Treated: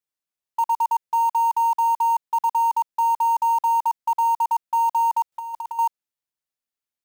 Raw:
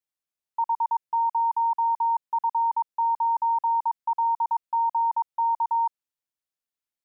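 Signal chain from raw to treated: in parallel at -6.5 dB: companded quantiser 4-bit; 5.32–5.79 s: on the sum: compressor with a negative ratio -27 dBFS, ratio -0.5

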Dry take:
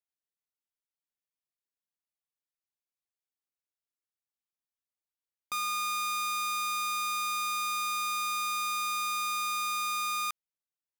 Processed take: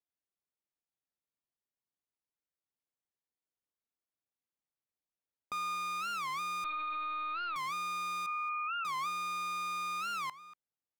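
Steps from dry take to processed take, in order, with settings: 8.26–8.87 s: formants replaced by sine waves; high-pass 340 Hz 6 dB/octave; tilt EQ -4 dB/octave; echo from a far wall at 39 m, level -16 dB; 6.64–7.58 s: LPC vocoder at 8 kHz pitch kept; warped record 45 rpm, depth 250 cents; trim -1 dB

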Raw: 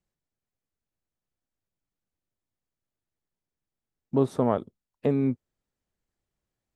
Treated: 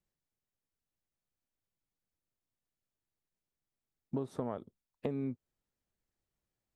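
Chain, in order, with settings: compression 10:1, threshold -28 dBFS, peak gain reduction 12.5 dB; trim -4 dB

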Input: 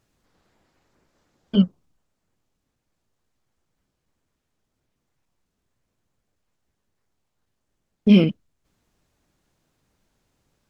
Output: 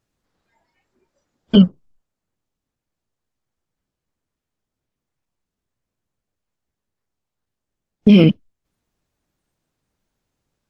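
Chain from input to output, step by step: spectral noise reduction 18 dB; loudness maximiser +13 dB; trim -1 dB

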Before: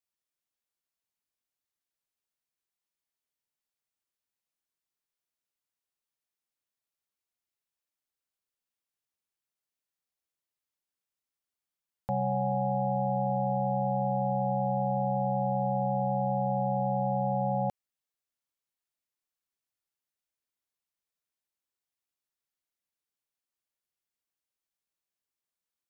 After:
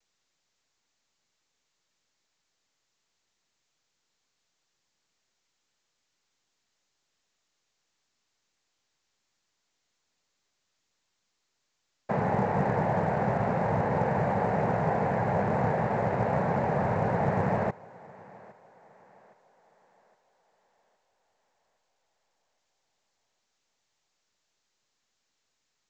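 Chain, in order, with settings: noise-vocoded speech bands 6; on a send: thinning echo 814 ms, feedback 45%, high-pass 260 Hz, level -21 dB; on the sum: trim +2 dB; µ-law 128 kbps 16 kHz

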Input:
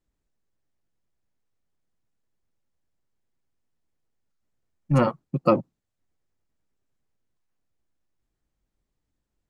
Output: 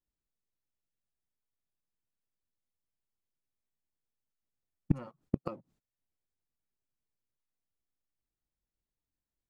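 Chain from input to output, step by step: gate -47 dBFS, range -16 dB; in parallel at -6 dB: crossover distortion -38.5 dBFS; on the sum: inverted gate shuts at -14 dBFS, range -31 dB; trim +2.5 dB

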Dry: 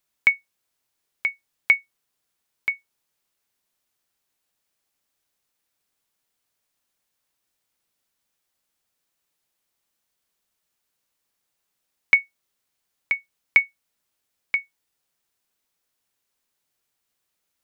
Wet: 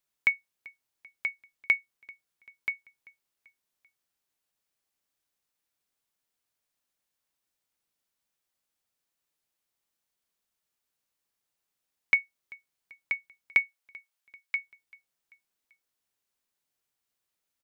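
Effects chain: 13.57–14.56 s: high-pass 320 Hz -> 1.1 kHz 12 dB/octave; feedback delay 389 ms, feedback 51%, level -23.5 dB; trim -6.5 dB

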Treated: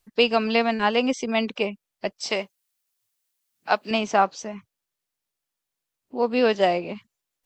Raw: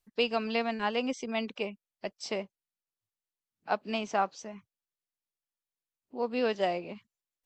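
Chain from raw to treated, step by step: 2.30–3.91 s: tilt EQ +2.5 dB/octave; trim +9 dB

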